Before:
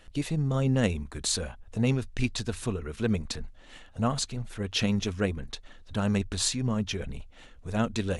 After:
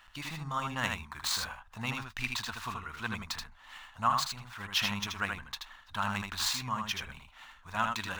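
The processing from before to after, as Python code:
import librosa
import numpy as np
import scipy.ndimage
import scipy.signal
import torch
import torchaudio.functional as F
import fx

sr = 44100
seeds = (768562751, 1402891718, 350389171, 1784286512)

p1 = scipy.ndimage.median_filter(x, 5, mode='constant')
p2 = fx.low_shelf_res(p1, sr, hz=680.0, db=-13.5, q=3.0)
y = p2 + fx.echo_single(p2, sr, ms=79, db=-4.5, dry=0)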